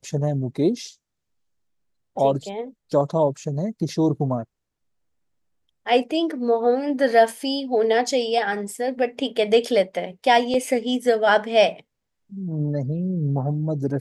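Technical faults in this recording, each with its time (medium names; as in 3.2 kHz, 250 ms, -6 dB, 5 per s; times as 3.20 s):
10.54 s: dropout 3.1 ms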